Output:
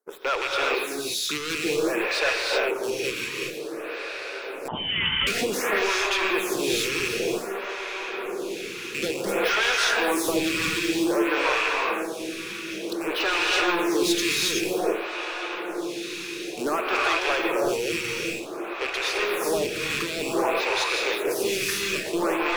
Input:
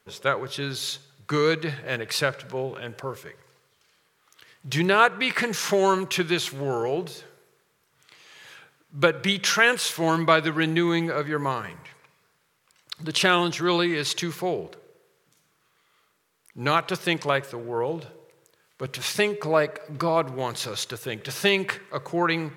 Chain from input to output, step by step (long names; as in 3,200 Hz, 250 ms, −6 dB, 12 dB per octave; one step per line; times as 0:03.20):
loose part that buzzes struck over −39 dBFS, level −15 dBFS
four-pole ladder high-pass 280 Hz, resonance 45%
leveller curve on the samples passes 3
feedback delay with all-pass diffusion 1,877 ms, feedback 58%, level −13 dB
soft clipping −22 dBFS, distortion −11 dB
harmonic and percussive parts rebalanced harmonic −6 dB
reverb whose tail is shaped and stops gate 410 ms rising, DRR −2.5 dB
0:04.68–0:05.27: voice inversion scrambler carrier 3,400 Hz
phaser with staggered stages 0.54 Hz
level +4.5 dB